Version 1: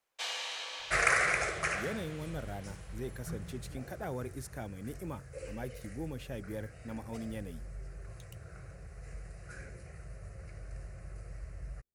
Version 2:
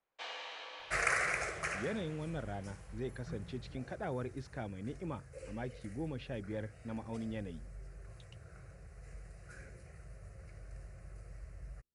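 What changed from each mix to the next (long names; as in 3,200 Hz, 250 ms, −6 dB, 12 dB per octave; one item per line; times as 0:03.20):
speech: add low-pass filter 4,700 Hz 24 dB per octave
first sound: add head-to-tape spacing loss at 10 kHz 27 dB
second sound −5.0 dB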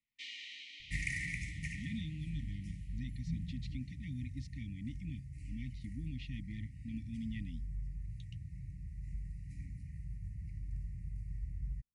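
second sound: add tilt shelving filter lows +8.5 dB, about 1,200 Hz
master: add linear-phase brick-wall band-stop 300–1,800 Hz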